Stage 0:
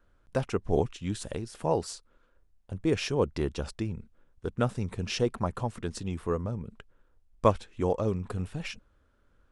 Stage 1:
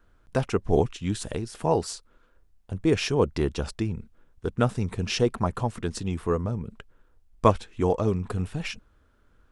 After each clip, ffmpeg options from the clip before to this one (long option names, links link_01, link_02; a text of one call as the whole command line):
ffmpeg -i in.wav -af "bandreject=frequency=550:width=12,volume=4.5dB" out.wav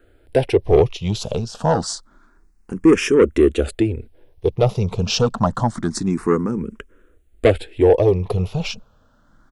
ffmpeg -i in.wav -filter_complex "[0:a]firequalizer=gain_entry='entry(110,0);entry(350,7);entry(960,1)':delay=0.05:min_phase=1,asoftclip=type=tanh:threshold=-13.5dB,asplit=2[link_01][link_02];[link_02]afreqshift=0.27[link_03];[link_01][link_03]amix=inputs=2:normalize=1,volume=9dB" out.wav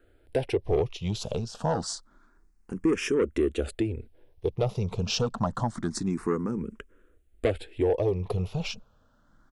ffmpeg -i in.wav -af "acompressor=threshold=-17dB:ratio=2,volume=-7dB" out.wav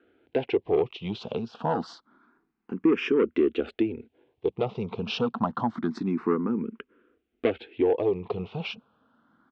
ffmpeg -i in.wav -af "highpass=230,equalizer=frequency=240:width_type=q:width=4:gain=5,equalizer=frequency=580:width_type=q:width=4:gain=-8,equalizer=frequency=1800:width_type=q:width=4:gain=-5,lowpass=frequency=3300:width=0.5412,lowpass=frequency=3300:width=1.3066,volume=3.5dB" out.wav